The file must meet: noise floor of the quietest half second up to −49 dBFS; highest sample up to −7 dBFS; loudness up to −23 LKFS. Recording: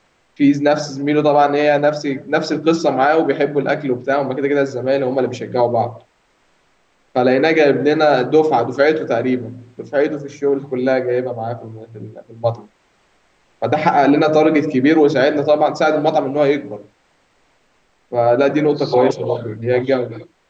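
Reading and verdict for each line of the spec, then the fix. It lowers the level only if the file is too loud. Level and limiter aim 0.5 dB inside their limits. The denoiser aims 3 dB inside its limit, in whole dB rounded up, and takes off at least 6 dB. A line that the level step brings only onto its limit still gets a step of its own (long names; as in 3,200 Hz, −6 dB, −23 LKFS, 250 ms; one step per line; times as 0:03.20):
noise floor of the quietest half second −59 dBFS: in spec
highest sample −3.5 dBFS: out of spec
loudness −16.5 LKFS: out of spec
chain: level −7 dB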